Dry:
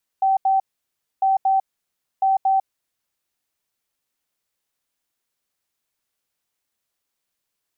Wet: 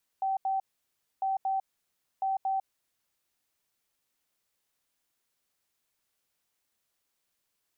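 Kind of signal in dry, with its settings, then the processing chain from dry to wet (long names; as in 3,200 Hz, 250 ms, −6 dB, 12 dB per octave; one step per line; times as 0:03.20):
beeps in groups sine 772 Hz, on 0.15 s, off 0.08 s, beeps 2, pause 0.62 s, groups 3, −14.5 dBFS
brickwall limiter −26 dBFS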